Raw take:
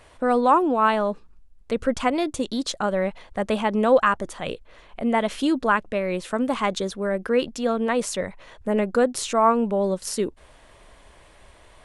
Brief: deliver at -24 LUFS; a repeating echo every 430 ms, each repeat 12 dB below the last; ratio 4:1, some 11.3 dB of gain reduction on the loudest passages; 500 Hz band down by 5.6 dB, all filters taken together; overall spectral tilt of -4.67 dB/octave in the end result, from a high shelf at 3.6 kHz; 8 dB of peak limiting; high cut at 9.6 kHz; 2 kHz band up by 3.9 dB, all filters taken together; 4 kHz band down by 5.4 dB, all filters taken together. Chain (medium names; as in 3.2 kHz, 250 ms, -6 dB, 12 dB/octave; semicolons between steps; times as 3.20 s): low-pass 9.6 kHz; peaking EQ 500 Hz -7 dB; peaking EQ 2 kHz +8.5 dB; treble shelf 3.6 kHz -5.5 dB; peaking EQ 4 kHz -7.5 dB; compression 4:1, threshold -27 dBFS; peak limiter -22.5 dBFS; feedback delay 430 ms, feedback 25%, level -12 dB; trim +9 dB